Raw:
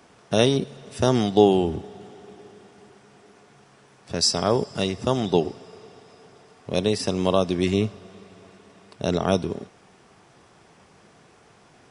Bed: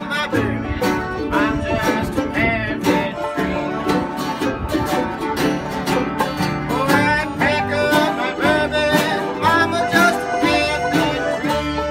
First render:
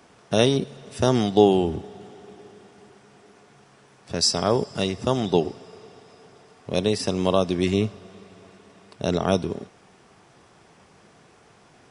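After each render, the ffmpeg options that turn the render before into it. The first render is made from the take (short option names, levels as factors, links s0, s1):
-af anull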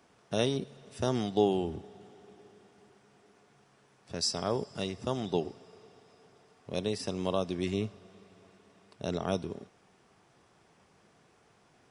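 -af "volume=0.316"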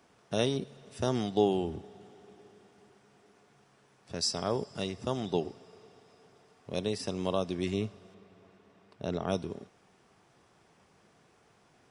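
-filter_complex "[0:a]asettb=1/sr,asplit=3[s0][s1][s2];[s0]atrim=end=8.144[s3];[s1]atrim=start=8.14:end=9.3,asetpts=PTS-STARTPTS,afade=t=in:d=0.004:c=qsin,afade=t=out:st=1.156:d=0.004:c=qsin,highshelf=f=5300:g=-12[s4];[s2]atrim=start=9.296[s5];[s3][s4]acrossfade=d=0.004:c1=hsin:c2=qsin[s6];[s6][s5]acrossfade=d=0.004:c1=qsin:c2=hsin"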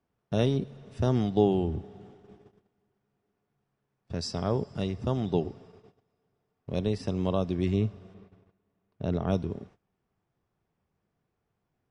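-af "aemphasis=mode=reproduction:type=bsi,agate=range=0.112:threshold=0.00282:ratio=16:detection=peak"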